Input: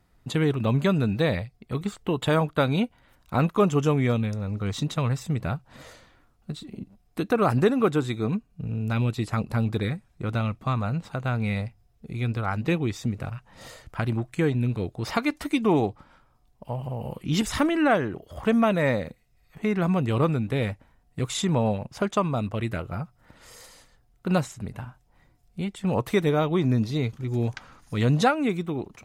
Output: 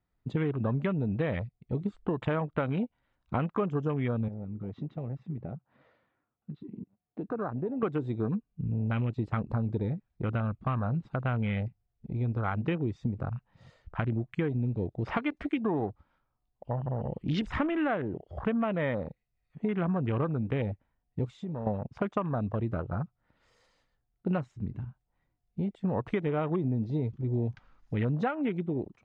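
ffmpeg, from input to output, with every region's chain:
ffmpeg -i in.wav -filter_complex "[0:a]asettb=1/sr,asplit=3[link_01][link_02][link_03];[link_01]atrim=end=4.284[link_04];[link_02]atrim=start=4.28:end=7.83,asetpts=PTS-STARTPTS,afade=type=in:duration=0.004:curve=qsin,afade=type=out:start_time=3.546:duration=0.004:curve=qsin,highpass=130,lowpass=2300,acompressor=threshold=-37dB:ratio=2:attack=3.2:release=140:knee=1:detection=peak[link_05];[link_03]atrim=start=7.826[link_06];[link_04][link_05]acrossfade=duration=0.004:curve1=hsin:curve2=qsin[link_07];[link_07][link_06]acrossfade=duration=0.004:curve1=qsin:curve2=hsin,asettb=1/sr,asplit=3[link_08][link_09][link_10];[link_08]atrim=end=21.254[link_11];[link_09]atrim=start=21.25:end=21.67,asetpts=PTS-STARTPTS,afade=type=in:duration=0.004:curve=qsin,afade=type=out:start_time=0.416:duration=0.004:curve=qsin,aeval=exprs='val(0)+0.5*0.0106*sgn(val(0))':channel_layout=same,acompressor=threshold=-33dB:ratio=6:attack=3.2:release=140:knee=1:detection=peak[link_12];[link_10]atrim=start=21.666[link_13];[link_11][link_12]acrossfade=duration=0.004:curve1=hsin:curve2=qsin[link_14];[link_14][link_13]acrossfade=duration=0.004:curve1=qsin:curve2=hsin,afwtdn=0.02,lowpass=3900,acompressor=threshold=-26dB:ratio=6" out.wav

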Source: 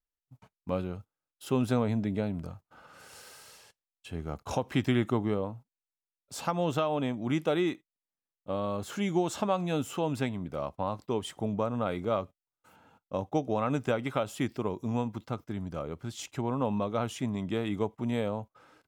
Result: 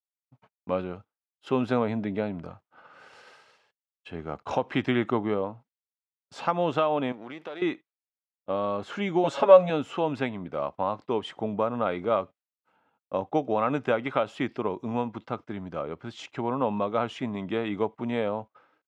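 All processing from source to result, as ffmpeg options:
ffmpeg -i in.wav -filter_complex "[0:a]asettb=1/sr,asplit=3[link_01][link_02][link_03];[link_01]atrim=end=7.124[link_04];[link_02]atrim=start=7.12:end=7.62,asetpts=PTS-STARTPTS,afade=type=in:duration=0.004:curve=qsin,afade=type=out:start_time=0.496:duration=0.004:curve=qsin,aeval=exprs='if(lt(val(0),0),0.447*val(0),val(0))':channel_layout=same,highpass=frequency=440:poles=1,acompressor=threshold=-38dB:ratio=5:attack=3.2:release=140:knee=1:detection=peak[link_05];[link_03]atrim=start=7.616[link_06];[link_04][link_05]acrossfade=duration=0.004:curve1=hsin:curve2=qsin[link_07];[link_07][link_06]acrossfade=duration=0.004:curve1=qsin:curve2=hsin,asettb=1/sr,asplit=3[link_08][link_09][link_10];[link_08]atrim=end=9.234[link_11];[link_09]atrim=start=9.23:end=9.7,asetpts=PTS-STARTPTS,afade=type=in:duration=0.004:curve=qsin,afade=type=out:start_time=0.466:duration=0.004:curve=qsin,equalizer=frequency=550:width=6.6:gain=10.5,aecho=1:1:7.2:0.98,atrim=end_sample=20727[link_12];[link_10]atrim=start=9.696[link_13];[link_11][link_12]acrossfade=duration=0.004:curve1=hsin:curve2=qsin[link_14];[link_14][link_13]acrossfade=duration=0.004:curve1=qsin:curve2=hsin,lowpass=2900,agate=range=-33dB:threshold=-50dB:ratio=3:detection=peak,highpass=frequency=360:poles=1,volume=6dB" out.wav

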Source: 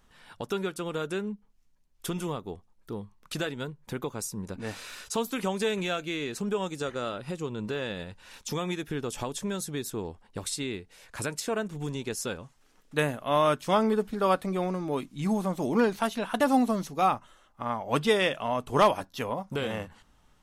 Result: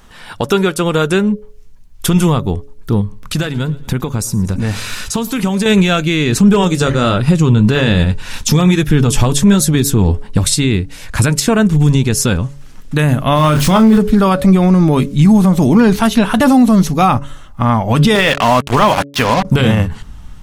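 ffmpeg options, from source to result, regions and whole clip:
ffmpeg -i in.wav -filter_complex "[0:a]asettb=1/sr,asplit=3[link_01][link_02][link_03];[link_01]atrim=end=3.014[link_04];[link_02]atrim=start=3.01:end=5.66,asetpts=PTS-STARTPTS,afade=type=in:duration=0.004:curve=qsin,afade=type=out:start_time=2.646:duration=0.004:curve=qsin,acompressor=threshold=-40dB:ratio=2:attack=3.2:release=140:knee=1:detection=peak,aecho=1:1:114|228|342|456:0.0891|0.0455|0.0232|0.0118,atrim=end_sample=116865[link_05];[link_03]atrim=start=5.656[link_06];[link_04][link_05]acrossfade=duration=0.004:curve1=hsin:curve2=qsin[link_07];[link_07][link_06]acrossfade=duration=0.004:curve1=qsin:curve2=hsin,asettb=1/sr,asplit=3[link_08][link_09][link_10];[link_08]atrim=end=6.324[link_11];[link_09]atrim=start=6.32:end=10.39,asetpts=PTS-STARTPTS,afade=type=in:duration=0.004:curve=qsin,afade=type=out:start_time=4.066:duration=0.004:curve=qsin,flanger=delay=1.6:depth=8.7:regen=-56:speed=1.2:shape=triangular,asoftclip=type=hard:threshold=-25.5dB,acontrast=53[link_12];[link_10]atrim=start=10.386[link_13];[link_11][link_12]acrossfade=duration=0.004:curve1=hsin:curve2=qsin[link_14];[link_14][link_13]acrossfade=duration=0.004:curve1=qsin:curve2=hsin,asettb=1/sr,asplit=3[link_15][link_16][link_17];[link_15]atrim=end=13.364[link_18];[link_16]atrim=start=13.36:end=13.98,asetpts=PTS-STARTPTS,afade=type=in:duration=0.004:curve=qsin,afade=type=out:start_time=0.616:duration=0.004:curve=qsin,aeval=exprs='val(0)+0.5*0.015*sgn(val(0))':channel_layout=same,asplit=2[link_19][link_20];[link_20]adelay=27,volume=-7dB[link_21];[link_19][link_21]amix=inputs=2:normalize=0,atrim=end_sample=27342[link_22];[link_17]atrim=start=13.976[link_23];[link_18][link_22]acrossfade=duration=0.004:curve1=hsin:curve2=qsin[link_24];[link_24][link_23]acrossfade=duration=0.004:curve1=qsin:curve2=hsin,asettb=1/sr,asplit=3[link_25][link_26][link_27];[link_25]atrim=end=18.154[link_28];[link_26]atrim=start=18.15:end=19.45,asetpts=PTS-STARTPTS,afade=type=in:duration=0.004:curve=qsin,afade=type=out:start_time=1.296:duration=0.004:curve=qsin,lowshelf=frequency=63:gain=-11,acrusher=bits=5:mix=0:aa=0.5,asplit=2[link_29][link_30];[link_30]highpass=frequency=720:poles=1,volume=10dB,asoftclip=type=tanh:threshold=-10.5dB[link_31];[link_29][link_31]amix=inputs=2:normalize=0,lowpass=frequency=3700:poles=1,volume=-6dB[link_32];[link_27]atrim=start=19.446[link_33];[link_28][link_32]acrossfade=duration=0.004:curve1=hsin:curve2=qsin[link_34];[link_34][link_33]acrossfade=duration=0.004:curve1=qsin:curve2=hsin,bandreject=frequency=141.2:width_type=h:width=4,bandreject=frequency=282.4:width_type=h:width=4,bandreject=frequency=423.6:width_type=h:width=4,bandreject=frequency=564.8:width_type=h:width=4,asubboost=boost=4.5:cutoff=200,alimiter=level_in=20dB:limit=-1dB:release=50:level=0:latency=1,volume=-1dB" out.wav

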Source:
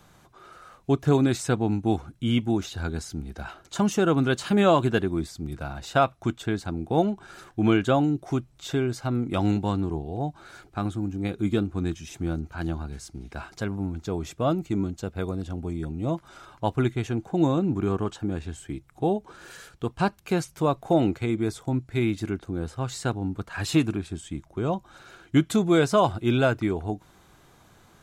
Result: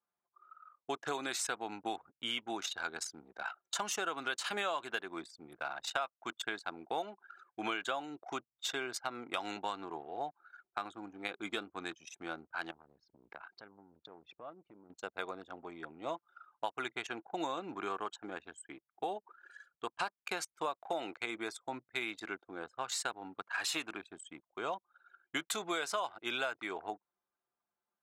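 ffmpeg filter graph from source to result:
ffmpeg -i in.wav -filter_complex "[0:a]asettb=1/sr,asplit=3[link_01][link_02][link_03];[link_01]atrim=end=12.714[link_04];[link_02]atrim=start=12.71:end=14.9,asetpts=PTS-STARTPTS,afade=type=in:duration=0.004:curve=qsin,afade=type=out:start_time=2.186:duration=0.004:curve=qsin,lowpass=frequency=4900:width=0.5412,lowpass=frequency=4900:width=1.3066,equalizer=frequency=100:width=0.41:gain=6,acompressor=threshold=-34dB:ratio=20:attack=3.2:release=140:knee=1:detection=peak[link_05];[link_03]atrim=start=14.896[link_06];[link_04][link_05]acrossfade=duration=0.004:curve1=hsin:curve2=qsin[link_07];[link_07][link_06]acrossfade=duration=0.004:curve1=qsin:curve2=hsin,anlmdn=1,highpass=920,acompressor=threshold=-36dB:ratio=6,volume=3dB" out.wav

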